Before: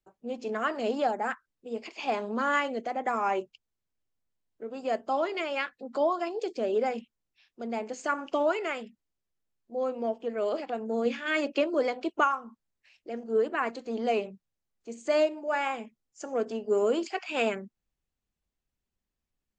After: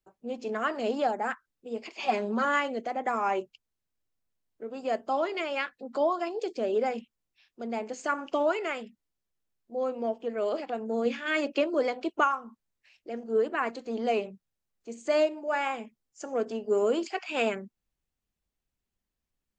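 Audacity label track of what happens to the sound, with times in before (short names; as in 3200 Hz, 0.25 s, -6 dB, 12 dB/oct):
1.990000	2.450000	comb 5.3 ms, depth 81%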